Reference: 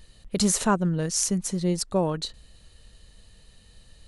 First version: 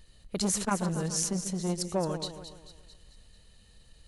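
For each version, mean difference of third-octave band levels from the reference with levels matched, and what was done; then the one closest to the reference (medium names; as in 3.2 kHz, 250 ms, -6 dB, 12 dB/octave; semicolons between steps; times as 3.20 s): 5.5 dB: on a send: two-band feedback delay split 2.1 kHz, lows 139 ms, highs 221 ms, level -9.5 dB; on the sum: transformer saturation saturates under 750 Hz; trim -4.5 dB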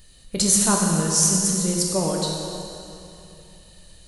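9.0 dB: treble shelf 4.9 kHz +10.5 dB; plate-style reverb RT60 2.9 s, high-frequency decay 0.85×, DRR -1.5 dB; trim -2 dB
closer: first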